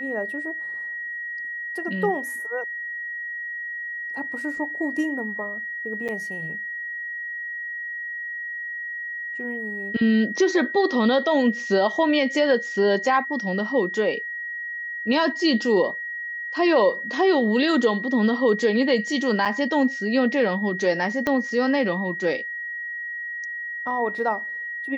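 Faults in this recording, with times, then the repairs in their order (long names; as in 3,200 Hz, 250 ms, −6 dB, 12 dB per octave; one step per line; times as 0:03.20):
whistle 1,900 Hz −29 dBFS
0:06.08–0:06.09: drop-out 7.5 ms
0:19.45–0:19.46: drop-out 6.4 ms
0:21.27: click −11 dBFS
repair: click removal
notch filter 1,900 Hz, Q 30
repair the gap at 0:06.08, 7.5 ms
repair the gap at 0:19.45, 6.4 ms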